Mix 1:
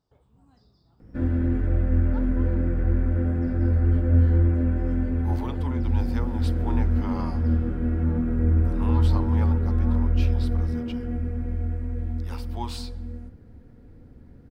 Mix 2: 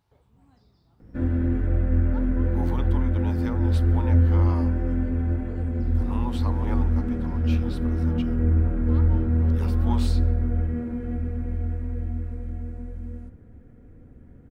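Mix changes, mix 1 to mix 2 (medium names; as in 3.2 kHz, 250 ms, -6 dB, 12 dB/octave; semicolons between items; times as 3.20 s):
speech: entry -2.70 s; master: add peaking EQ 4.9 kHz -5 dB 0.21 oct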